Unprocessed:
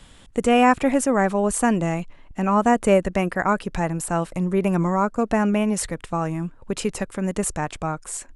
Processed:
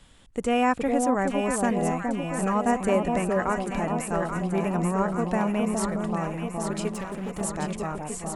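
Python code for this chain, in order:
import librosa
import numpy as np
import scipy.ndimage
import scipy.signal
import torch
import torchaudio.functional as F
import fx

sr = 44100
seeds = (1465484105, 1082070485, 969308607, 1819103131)

y = fx.echo_alternate(x, sr, ms=416, hz=1000.0, feedback_pct=78, wet_db=-3)
y = fx.overload_stage(y, sr, gain_db=22.5, at=(6.9, 7.41))
y = F.gain(torch.from_numpy(y), -6.5).numpy()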